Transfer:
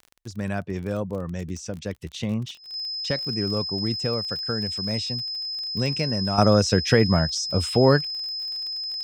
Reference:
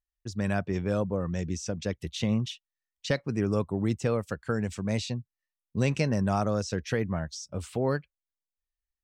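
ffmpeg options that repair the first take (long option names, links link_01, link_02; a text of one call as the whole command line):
ffmpeg -i in.wav -af "adeclick=threshold=4,bandreject=frequency=5100:width=30,asetnsamples=nb_out_samples=441:pad=0,asendcmd='6.38 volume volume -10.5dB',volume=0dB" out.wav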